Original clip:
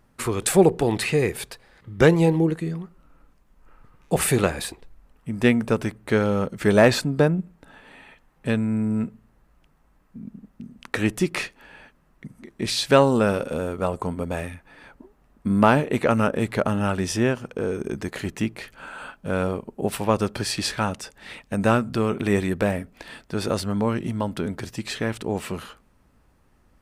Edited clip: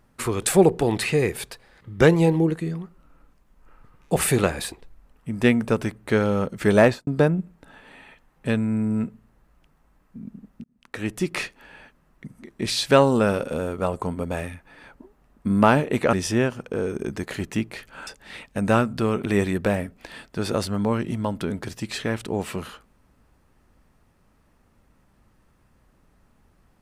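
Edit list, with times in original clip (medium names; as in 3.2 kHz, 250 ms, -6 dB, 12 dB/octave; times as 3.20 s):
6.81–7.07 s: studio fade out
10.64–11.44 s: fade in
16.13–16.98 s: delete
18.92–21.03 s: delete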